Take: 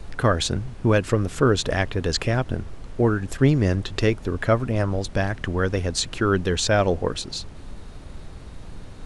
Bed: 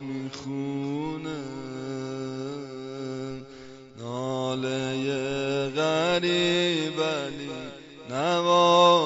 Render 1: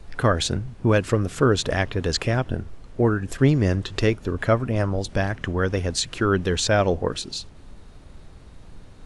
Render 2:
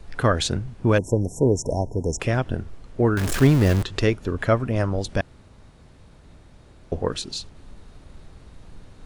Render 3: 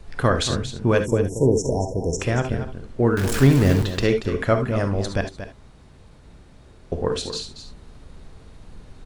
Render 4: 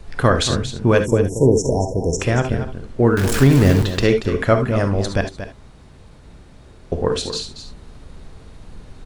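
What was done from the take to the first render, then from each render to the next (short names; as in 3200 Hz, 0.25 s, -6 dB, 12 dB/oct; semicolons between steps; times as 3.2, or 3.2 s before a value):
noise print and reduce 6 dB
0.98–2.2 brick-wall FIR band-stop 1000–5300 Hz; 3.17–3.83 zero-crossing step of -21 dBFS; 5.21–6.92 room tone
on a send: echo 0.232 s -11 dB; on the sum: non-linear reverb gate 90 ms rising, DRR 7.5 dB
gain +4 dB; limiter -2 dBFS, peak gain reduction 3 dB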